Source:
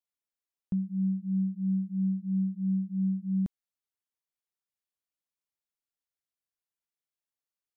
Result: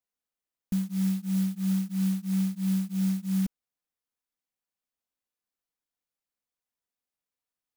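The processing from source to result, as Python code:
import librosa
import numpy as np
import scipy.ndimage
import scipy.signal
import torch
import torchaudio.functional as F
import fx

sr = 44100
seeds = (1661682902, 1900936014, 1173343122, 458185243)

y = x + 0.65 * np.pad(x, (int(4.0 * sr / 1000.0), 0))[:len(x)]
y = fx.clock_jitter(y, sr, seeds[0], jitter_ms=0.1)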